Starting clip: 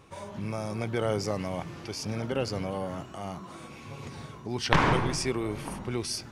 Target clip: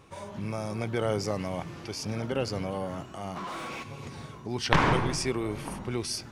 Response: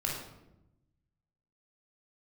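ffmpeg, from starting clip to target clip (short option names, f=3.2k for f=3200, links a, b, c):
-filter_complex "[0:a]asplit=3[a][b][c];[a]afade=t=out:st=3.35:d=0.02[d];[b]asplit=2[e][f];[f]highpass=f=720:p=1,volume=26dB,asoftclip=type=tanh:threshold=-29dB[g];[e][g]amix=inputs=2:normalize=0,lowpass=f=2.8k:p=1,volume=-6dB,afade=t=in:st=3.35:d=0.02,afade=t=out:st=3.82:d=0.02[h];[c]afade=t=in:st=3.82:d=0.02[i];[d][h][i]amix=inputs=3:normalize=0"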